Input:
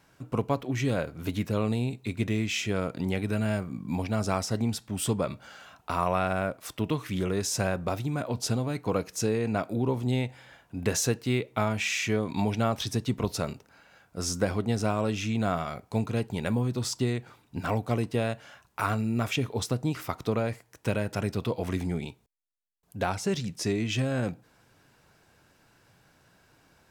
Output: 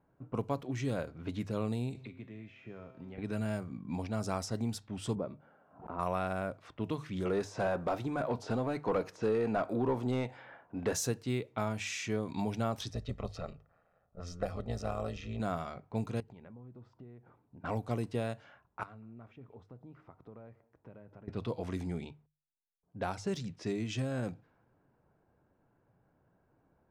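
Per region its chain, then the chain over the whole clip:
0:01.95–0:03.18: tuned comb filter 130 Hz, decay 1 s, mix 80% + multiband upward and downward compressor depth 100%
0:05.15–0:05.99: resonant band-pass 330 Hz, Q 0.62 + background raised ahead of every attack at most 110 dB per second
0:07.25–0:10.93: de-essing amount 85% + mid-hump overdrive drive 19 dB, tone 1,200 Hz, clips at −12.5 dBFS
0:12.90–0:15.40: amplitude modulation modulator 170 Hz, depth 80% + comb filter 1.6 ms, depth 62% + linearly interpolated sample-rate reduction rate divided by 2×
0:16.20–0:17.64: high-shelf EQ 5,000 Hz −10 dB + downward compressor 5 to 1, threshold −43 dBFS
0:18.83–0:21.28: downward compressor 2.5 to 1, threshold −49 dBFS + single-tap delay 192 ms −21.5 dB
whole clip: mains-hum notches 50/100/150 Hz; low-pass that shuts in the quiet parts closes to 810 Hz, open at −24 dBFS; dynamic equaliser 2,500 Hz, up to −4 dB, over −46 dBFS, Q 1.1; level −6.5 dB

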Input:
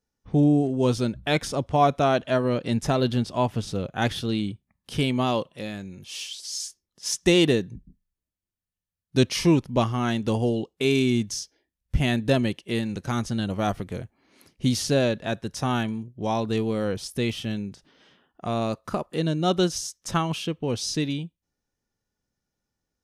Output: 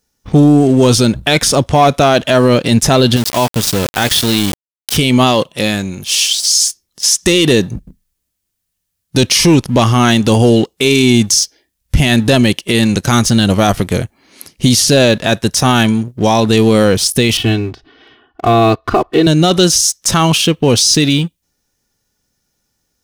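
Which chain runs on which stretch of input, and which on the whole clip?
0:03.16–0:04.97: low-shelf EQ 320 Hz −4 dB + downward compressor 2.5 to 1, threshold −28 dBFS + centre clipping without the shift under −36 dBFS
0:17.37–0:19.27: high-frequency loss of the air 320 metres + comb filter 2.7 ms, depth 94%
whole clip: leveller curve on the samples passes 1; high-shelf EQ 3,200 Hz +10 dB; boost into a limiter +14.5 dB; level −1 dB

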